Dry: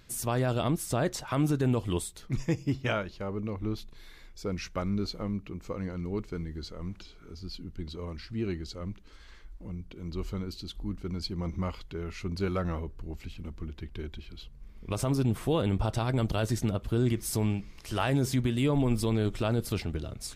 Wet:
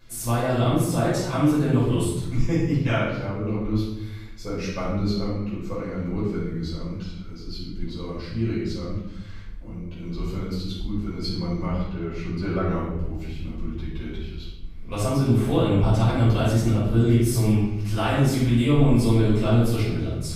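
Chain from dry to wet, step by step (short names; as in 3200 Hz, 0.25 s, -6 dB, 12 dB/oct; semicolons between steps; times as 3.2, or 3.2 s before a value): 11.65–12.69 high shelf 4700 Hz -11.5 dB; shoebox room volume 350 m³, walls mixed, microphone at 5.3 m; gain -7 dB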